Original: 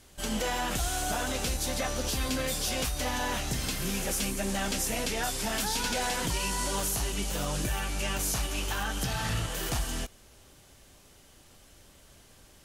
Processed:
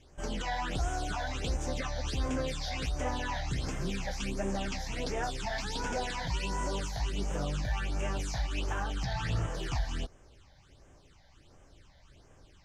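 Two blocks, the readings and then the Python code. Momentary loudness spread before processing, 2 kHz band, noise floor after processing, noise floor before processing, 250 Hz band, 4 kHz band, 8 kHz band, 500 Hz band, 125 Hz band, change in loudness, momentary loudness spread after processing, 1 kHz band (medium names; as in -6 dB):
3 LU, -4.5 dB, -60 dBFS, -57 dBFS, -3.5 dB, -7.0 dB, -12.5 dB, -2.5 dB, 0.0 dB, -4.5 dB, 2 LU, -3.0 dB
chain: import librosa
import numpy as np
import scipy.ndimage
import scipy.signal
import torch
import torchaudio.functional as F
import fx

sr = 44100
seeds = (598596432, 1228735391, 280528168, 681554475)

y = fx.peak_eq(x, sr, hz=220.0, db=-10.0, octaves=0.22)
y = fx.phaser_stages(y, sr, stages=8, low_hz=350.0, high_hz=4200.0, hz=1.4, feedback_pct=20)
y = fx.air_absorb(y, sr, metres=110.0)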